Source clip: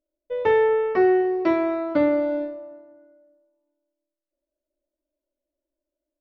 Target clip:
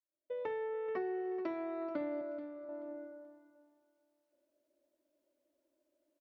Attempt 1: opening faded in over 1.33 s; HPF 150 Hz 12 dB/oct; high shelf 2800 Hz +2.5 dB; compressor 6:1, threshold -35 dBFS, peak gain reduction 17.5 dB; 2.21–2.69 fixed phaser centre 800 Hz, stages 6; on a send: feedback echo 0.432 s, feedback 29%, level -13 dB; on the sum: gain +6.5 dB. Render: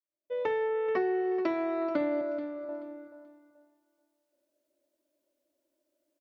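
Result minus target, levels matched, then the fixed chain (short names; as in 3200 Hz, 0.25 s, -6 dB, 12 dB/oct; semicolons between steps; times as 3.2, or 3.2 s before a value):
compressor: peak gain reduction -8.5 dB; 4000 Hz band +3.5 dB
opening faded in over 1.33 s; HPF 150 Hz 12 dB/oct; high shelf 2800 Hz -4 dB; compressor 6:1, threshold -45.5 dBFS, peak gain reduction 26 dB; 2.21–2.69 fixed phaser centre 800 Hz, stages 6; on a send: feedback echo 0.432 s, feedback 29%, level -13 dB; on the sum: gain +6.5 dB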